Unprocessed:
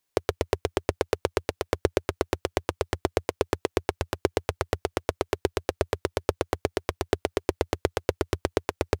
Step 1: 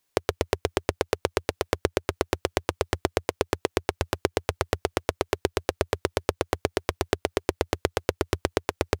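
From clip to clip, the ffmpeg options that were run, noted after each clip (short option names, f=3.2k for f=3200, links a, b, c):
-af "acompressor=threshold=-23dB:ratio=6,volume=4dB"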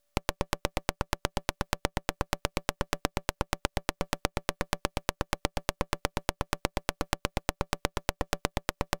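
-af "aeval=exprs='val(0)*sin(2*PI*290*n/s)':c=same,acompressor=threshold=-27dB:ratio=6,aeval=exprs='abs(val(0))':c=same,volume=4dB"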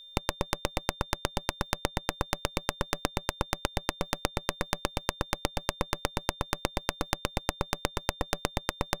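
-af "aeval=exprs='val(0)+0.00447*sin(2*PI*3600*n/s)':c=same"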